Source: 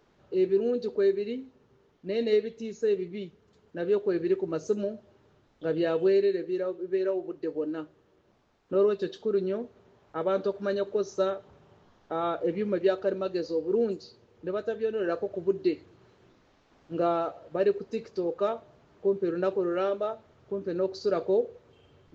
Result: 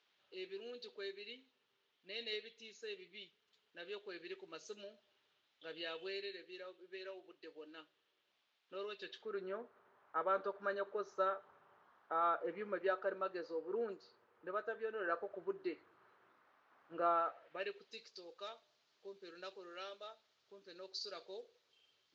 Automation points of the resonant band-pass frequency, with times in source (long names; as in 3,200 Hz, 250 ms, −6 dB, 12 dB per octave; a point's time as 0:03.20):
resonant band-pass, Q 1.8
0:08.90 3,300 Hz
0:09.50 1,300 Hz
0:17.13 1,300 Hz
0:18.05 4,500 Hz